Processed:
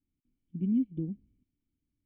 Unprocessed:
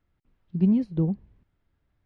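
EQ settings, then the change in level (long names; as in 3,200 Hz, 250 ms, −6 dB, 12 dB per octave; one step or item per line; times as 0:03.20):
formant resonators in series i
dynamic equaliser 180 Hz, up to −3 dB, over −34 dBFS, Q 1.8
0.0 dB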